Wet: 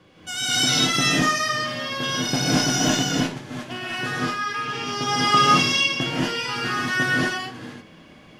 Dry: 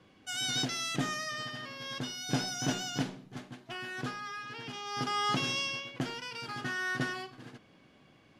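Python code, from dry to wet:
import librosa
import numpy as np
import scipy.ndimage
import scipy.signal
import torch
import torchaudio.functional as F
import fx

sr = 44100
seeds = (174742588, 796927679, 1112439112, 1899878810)

y = fx.rev_gated(x, sr, seeds[0], gate_ms=260, shape='rising', drr_db=-7.0)
y = y * librosa.db_to_amplitude(6.0)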